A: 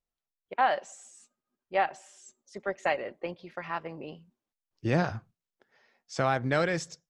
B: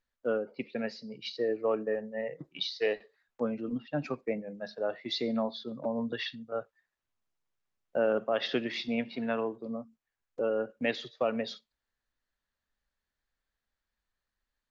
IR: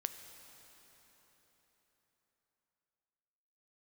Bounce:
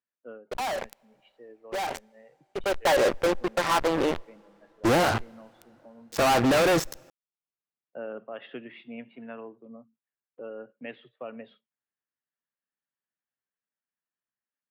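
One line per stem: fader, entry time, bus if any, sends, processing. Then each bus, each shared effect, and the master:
2.50 s -15.5 dB -> 2.89 s -4.5 dB, 0.00 s, send -23 dB, high-order bell 630 Hz +11 dB 3 oct; fuzz box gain 34 dB, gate -36 dBFS; decay stretcher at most 72 dB/s
-9.0 dB, 0.00 s, no send, Chebyshev band-pass 120–3000 Hz, order 4; auto duck -9 dB, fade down 0.35 s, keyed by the first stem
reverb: on, RT60 4.3 s, pre-delay 3 ms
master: peak limiter -18 dBFS, peak gain reduction 10.5 dB

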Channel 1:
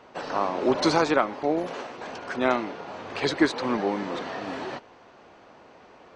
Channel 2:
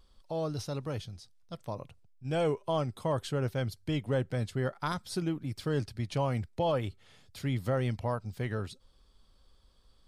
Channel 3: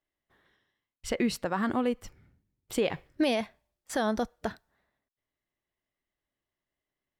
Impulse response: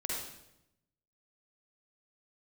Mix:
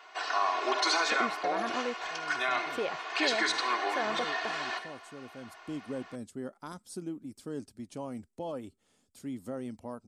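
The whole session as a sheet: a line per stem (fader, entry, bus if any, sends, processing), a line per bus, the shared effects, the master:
-0.5 dB, 0.00 s, send -8 dB, high-pass 1.1 kHz 12 dB/octave; comb 2.8 ms, depth 94%; peak limiter -20 dBFS, peak gain reduction 9 dB
5.24 s -17 dB -> 5.71 s -9.5 dB, 1.80 s, no send, graphic EQ 125/250/2000/4000/8000 Hz -9/+11/-5/-6/+10 dB
-4.0 dB, 0.00 s, no send, tone controls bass -12 dB, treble -11 dB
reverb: on, RT60 0.85 s, pre-delay 43 ms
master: bass shelf 74 Hz -11.5 dB

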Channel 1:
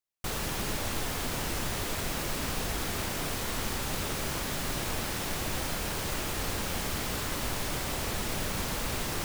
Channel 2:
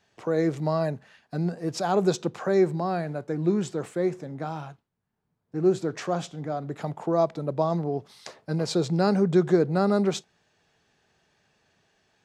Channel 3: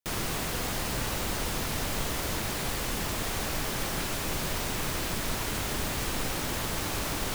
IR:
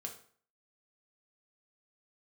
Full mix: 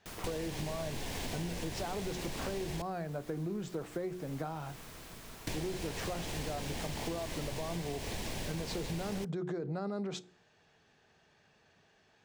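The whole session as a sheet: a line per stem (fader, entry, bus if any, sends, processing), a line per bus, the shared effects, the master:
+2.5 dB, 0.00 s, muted 2.82–5.47 s, send -21.5 dB, median filter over 3 samples; peaking EQ 1.3 kHz -13 dB 0.37 oct
+0.5 dB, 0.00 s, send -16 dB, treble shelf 8.1 kHz -11 dB; hum notches 60/120/180/240/300/360 Hz; peak limiter -20 dBFS, peak gain reduction 10 dB
-11.5 dB, 0.00 s, send -11 dB, auto duck -11 dB, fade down 0.30 s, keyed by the second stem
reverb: on, RT60 0.50 s, pre-delay 3 ms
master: compression 6:1, threshold -35 dBFS, peak gain reduction 13.5 dB

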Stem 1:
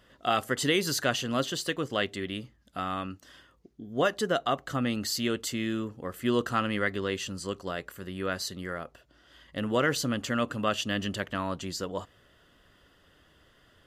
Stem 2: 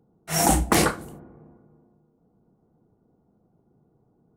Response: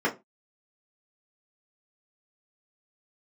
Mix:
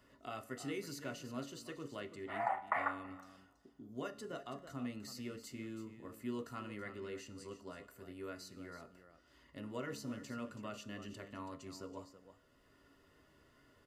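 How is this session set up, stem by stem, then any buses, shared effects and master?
-11.0 dB, 0.00 s, send -18 dB, echo send -12.5 dB, peaking EQ 3.3 kHz -13 dB 0.25 oct; three bands compressed up and down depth 40%
-5.0 dB, 2.00 s, no send, echo send -23.5 dB, elliptic band-pass 610–1900 Hz, stop band 50 dB; tilt shelf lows -6.5 dB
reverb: on, RT60 0.25 s, pre-delay 3 ms
echo: delay 328 ms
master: band-stop 1.6 kHz, Q 5.4; feedback comb 70 Hz, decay 0.97 s, harmonics all, mix 50%

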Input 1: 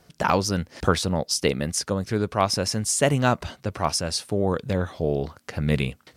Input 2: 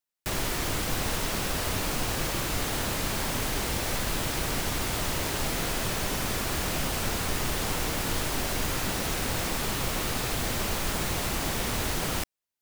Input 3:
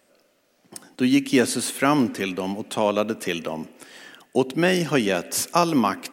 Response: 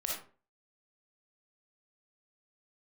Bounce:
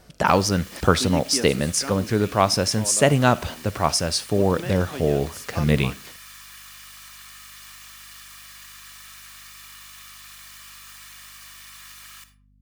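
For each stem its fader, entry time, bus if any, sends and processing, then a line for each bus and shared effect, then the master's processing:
+2.5 dB, 0.00 s, send -20.5 dB, none
-12.0 dB, 0.00 s, send -10 dB, comb filter that takes the minimum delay 1.7 ms; high-pass 1.2 kHz 24 dB/octave
-2.0 dB, 0.00 s, no send, auto duck -13 dB, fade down 1.85 s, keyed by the first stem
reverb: on, RT60 0.40 s, pre-delay 15 ms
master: hum 50 Hz, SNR 34 dB

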